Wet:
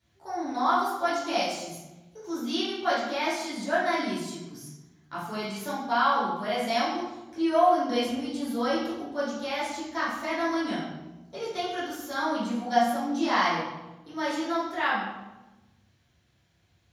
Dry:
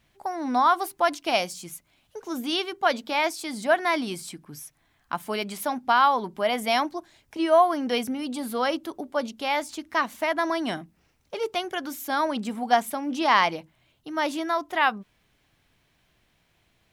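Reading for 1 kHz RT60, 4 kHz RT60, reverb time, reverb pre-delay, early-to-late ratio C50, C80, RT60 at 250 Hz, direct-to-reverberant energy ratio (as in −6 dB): 1.0 s, 0.75 s, 1.1 s, 3 ms, 1.0 dB, 4.5 dB, 1.6 s, −10.5 dB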